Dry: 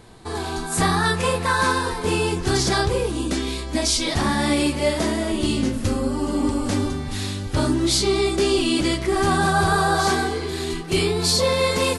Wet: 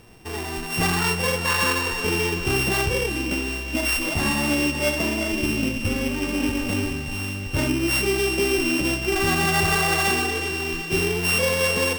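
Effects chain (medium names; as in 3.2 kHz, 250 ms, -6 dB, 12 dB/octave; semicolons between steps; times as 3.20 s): sorted samples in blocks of 16 samples; thinning echo 369 ms, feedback 64%, high-pass 810 Hz, level -10.5 dB; trim -2.5 dB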